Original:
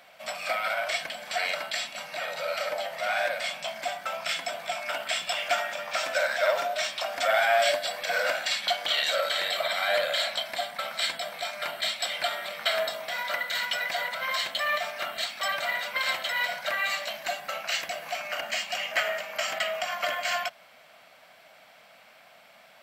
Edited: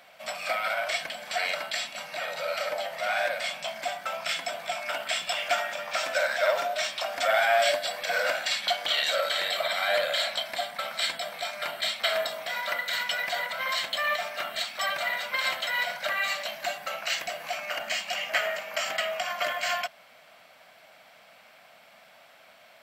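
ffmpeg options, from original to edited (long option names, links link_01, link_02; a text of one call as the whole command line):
ffmpeg -i in.wav -filter_complex "[0:a]asplit=2[link_01][link_02];[link_01]atrim=end=12.002[link_03];[link_02]atrim=start=12.618[link_04];[link_03][link_04]acrossfade=duration=0.004:curve1=hsin:curve2=hsin" out.wav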